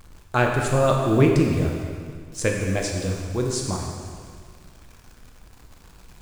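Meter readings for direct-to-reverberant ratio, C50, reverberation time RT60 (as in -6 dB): 0.5 dB, 2.5 dB, 2.0 s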